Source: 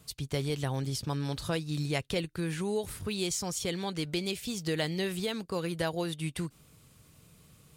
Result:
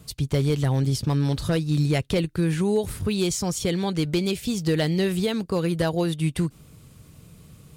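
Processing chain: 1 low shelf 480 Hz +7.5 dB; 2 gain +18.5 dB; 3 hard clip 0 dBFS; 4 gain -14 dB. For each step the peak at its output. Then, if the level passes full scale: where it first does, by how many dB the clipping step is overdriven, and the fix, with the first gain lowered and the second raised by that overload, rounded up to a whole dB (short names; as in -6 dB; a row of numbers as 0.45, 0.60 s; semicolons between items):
-12.5, +6.0, 0.0, -14.0 dBFS; step 2, 6.0 dB; step 2 +12.5 dB, step 4 -8 dB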